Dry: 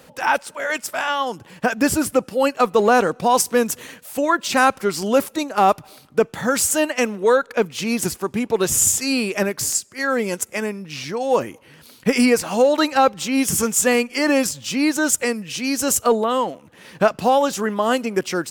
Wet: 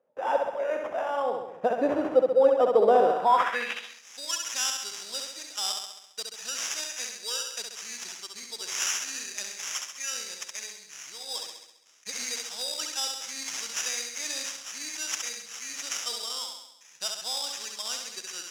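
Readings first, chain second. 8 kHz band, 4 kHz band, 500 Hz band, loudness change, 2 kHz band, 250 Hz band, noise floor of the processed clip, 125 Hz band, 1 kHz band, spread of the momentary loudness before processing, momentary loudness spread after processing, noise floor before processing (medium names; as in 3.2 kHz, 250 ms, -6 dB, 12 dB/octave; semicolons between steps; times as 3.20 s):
-8.5 dB, -3.0 dB, -8.0 dB, -9.0 dB, -13.0 dB, -19.0 dB, -53 dBFS, under -20 dB, -9.5 dB, 8 LU, 15 LU, -49 dBFS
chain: gate with hold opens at -35 dBFS; flutter echo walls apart 11.5 m, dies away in 0.84 s; sample-rate reducer 4.3 kHz, jitter 0%; saturation -4.5 dBFS, distortion -24 dB; band-pass sweep 560 Hz -> 5.8 kHz, 3.04–4.07 s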